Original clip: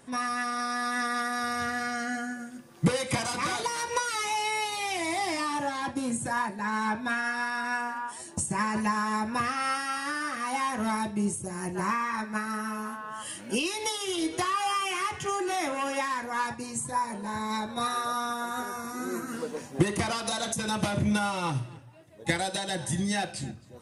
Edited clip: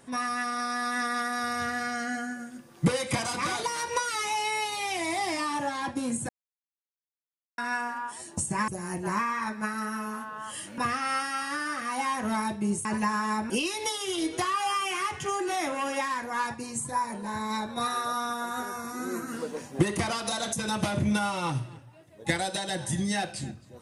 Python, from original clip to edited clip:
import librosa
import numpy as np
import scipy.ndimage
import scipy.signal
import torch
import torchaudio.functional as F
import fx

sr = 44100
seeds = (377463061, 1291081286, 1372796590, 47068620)

y = fx.edit(x, sr, fx.silence(start_s=6.29, length_s=1.29),
    fx.swap(start_s=8.68, length_s=0.65, other_s=11.4, other_length_s=2.1), tone=tone)